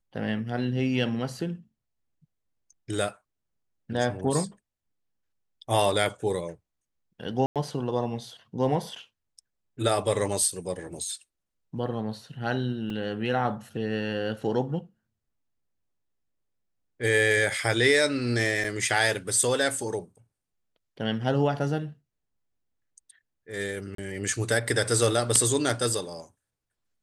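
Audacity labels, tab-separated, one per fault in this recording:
7.460000	7.560000	gap 97 ms
12.900000	12.900000	gap 2.5 ms
18.640000	18.640000	gap 4.3 ms
23.950000	23.980000	gap 33 ms

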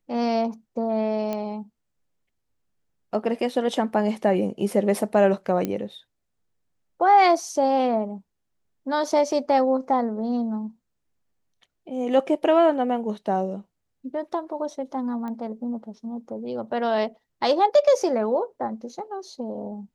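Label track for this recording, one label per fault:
1.330000	1.330000	pop -16 dBFS
5.650000	5.650000	pop -13 dBFS
15.280000	15.280000	pop -23 dBFS

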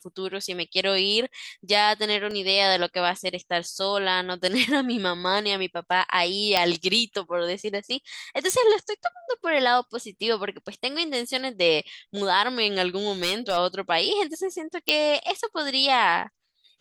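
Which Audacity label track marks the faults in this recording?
2.310000	2.310000	gap 2 ms
6.570000	6.570000	pop -6 dBFS
8.500000	8.500000	pop
13.230000	13.580000	clipped -17.5 dBFS
14.890000	14.890000	pop -6 dBFS

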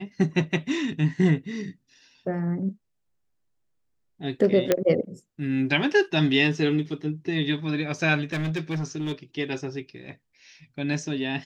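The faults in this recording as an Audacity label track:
4.720000	4.720000	pop -6 dBFS
8.330000	9.130000	clipped -24 dBFS

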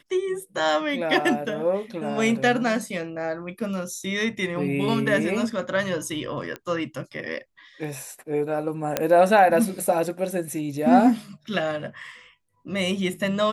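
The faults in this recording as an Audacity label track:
6.560000	6.560000	pop -19 dBFS
8.970000	8.970000	pop -6 dBFS

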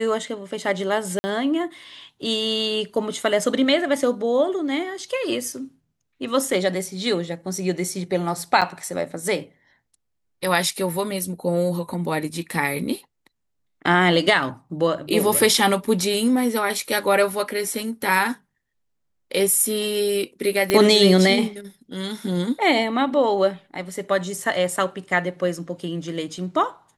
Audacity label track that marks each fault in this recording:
1.190000	1.240000	gap 50 ms
8.610000	8.620000	gap 6.7 ms
15.870000	15.870000	gap 3.4 ms
20.700000	20.700000	pop -5 dBFS

